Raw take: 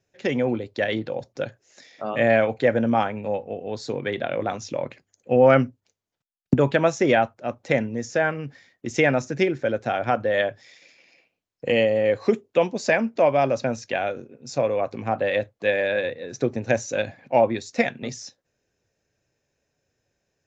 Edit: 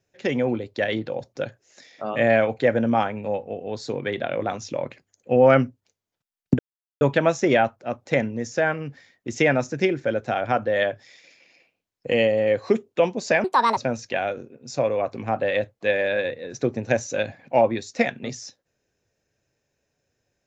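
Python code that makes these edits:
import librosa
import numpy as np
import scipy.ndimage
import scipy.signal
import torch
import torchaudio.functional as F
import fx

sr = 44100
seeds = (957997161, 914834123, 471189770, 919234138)

y = fx.edit(x, sr, fx.insert_silence(at_s=6.59, length_s=0.42),
    fx.speed_span(start_s=13.02, length_s=0.54, speed=1.65), tone=tone)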